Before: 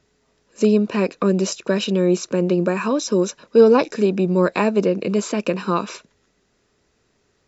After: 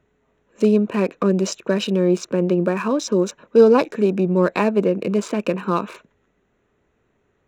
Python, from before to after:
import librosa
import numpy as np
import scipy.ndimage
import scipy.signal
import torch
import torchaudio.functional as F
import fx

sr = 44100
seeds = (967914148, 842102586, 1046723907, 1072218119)

y = fx.wiener(x, sr, points=9)